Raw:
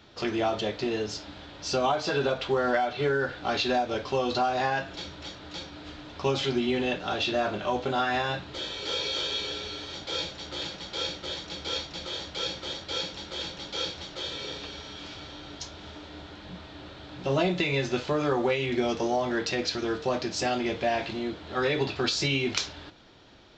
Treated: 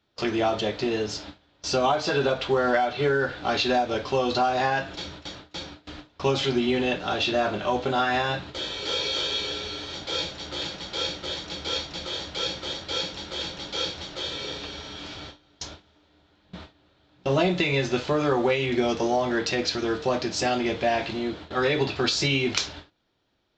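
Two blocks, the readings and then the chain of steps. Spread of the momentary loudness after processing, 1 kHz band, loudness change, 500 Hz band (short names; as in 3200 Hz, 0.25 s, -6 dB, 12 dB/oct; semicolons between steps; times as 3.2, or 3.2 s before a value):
14 LU, +3.0 dB, +3.0 dB, +3.0 dB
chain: gate with hold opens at -31 dBFS; gain +3 dB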